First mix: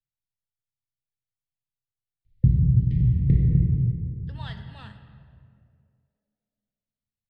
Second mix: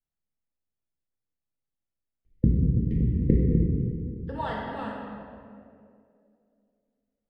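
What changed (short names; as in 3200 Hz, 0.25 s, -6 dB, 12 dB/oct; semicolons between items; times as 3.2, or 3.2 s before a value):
speech: send +11.5 dB; master: add graphic EQ 125/250/500/1000/4000 Hz -11/+11/+11/+7/-9 dB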